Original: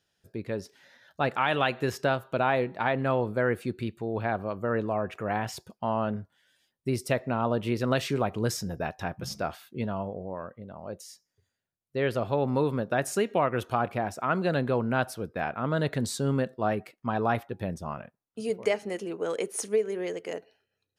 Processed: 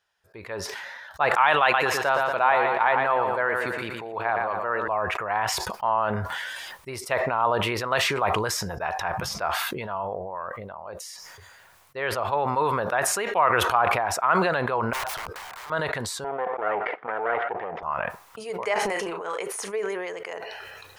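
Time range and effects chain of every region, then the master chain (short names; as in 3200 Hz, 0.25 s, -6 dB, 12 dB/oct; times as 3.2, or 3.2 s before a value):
1.62–4.88 HPF 130 Hz + feedback echo 0.117 s, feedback 43%, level -8 dB
14.93–15.7 compressor 5:1, threshold -31 dBFS + wrapped overs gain 37.5 dB
16.24–17.83 minimum comb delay 0.59 ms + speaker cabinet 320–2200 Hz, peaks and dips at 470 Hz +9 dB, 730 Hz +8 dB, 1100 Hz -9 dB, 1700 Hz -6 dB
18.74–19.38 doubler 35 ms -8 dB + transient shaper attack -11 dB, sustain +1 dB
whole clip: graphic EQ 125/250/1000/2000 Hz -7/-12/+12/+5 dB; sustainer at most 23 dB/s; gain -3 dB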